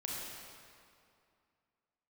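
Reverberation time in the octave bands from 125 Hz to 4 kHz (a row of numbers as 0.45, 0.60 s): 2.4, 2.6, 2.4, 2.4, 2.1, 1.8 s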